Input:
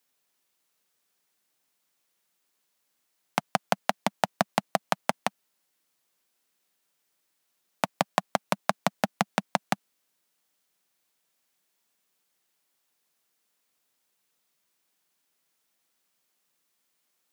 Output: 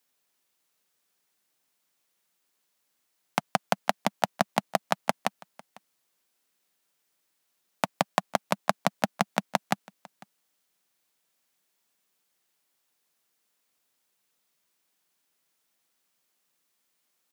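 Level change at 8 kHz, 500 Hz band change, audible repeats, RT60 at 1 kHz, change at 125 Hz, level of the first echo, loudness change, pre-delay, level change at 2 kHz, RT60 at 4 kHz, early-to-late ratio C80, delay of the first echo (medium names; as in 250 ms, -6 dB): 0.0 dB, 0.0 dB, 1, no reverb, 0.0 dB, -23.5 dB, 0.0 dB, no reverb, 0.0 dB, no reverb, no reverb, 500 ms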